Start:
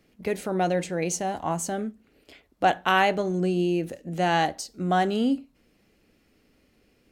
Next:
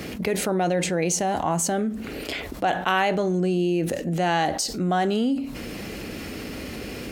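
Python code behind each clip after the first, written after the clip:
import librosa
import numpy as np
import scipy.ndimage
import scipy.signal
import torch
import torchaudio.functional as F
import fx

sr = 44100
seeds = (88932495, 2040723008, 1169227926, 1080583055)

y = scipy.signal.sosfilt(scipy.signal.butter(2, 44.0, 'highpass', fs=sr, output='sos'), x)
y = fx.env_flatten(y, sr, amount_pct=70)
y = y * 10.0 ** (-3.5 / 20.0)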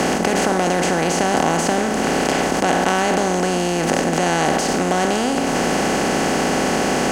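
y = fx.bin_compress(x, sr, power=0.2)
y = fx.high_shelf(y, sr, hz=7500.0, db=-8.5)
y = y * 10.0 ** (-2.5 / 20.0)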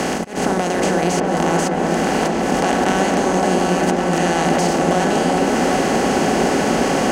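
y = fx.auto_swell(x, sr, attack_ms=224.0)
y = fx.echo_opening(y, sr, ms=373, hz=750, octaves=1, feedback_pct=70, wet_db=0)
y = y * 10.0 ** (-2.0 / 20.0)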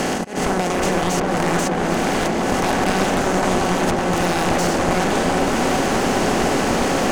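y = np.minimum(x, 2.0 * 10.0 ** (-16.5 / 20.0) - x)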